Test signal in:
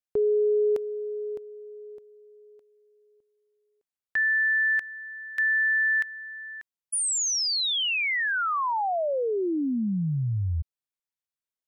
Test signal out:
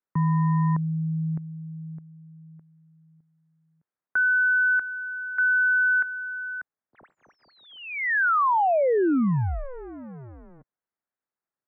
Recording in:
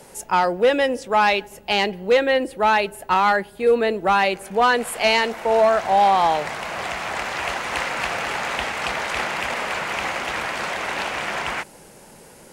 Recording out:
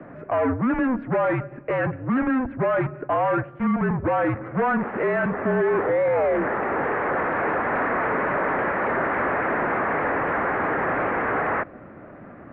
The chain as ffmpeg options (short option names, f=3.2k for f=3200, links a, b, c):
-af "volume=26dB,asoftclip=hard,volume=-26dB,highpass=f=270:w=0.5412,highpass=f=270:w=1.3066,highpass=f=370:t=q:w=0.5412,highpass=f=370:t=q:w=1.307,lowpass=f=2.1k:t=q:w=0.5176,lowpass=f=2.1k:t=q:w=0.7071,lowpass=f=2.1k:t=q:w=1.932,afreqshift=-260,volume=7dB"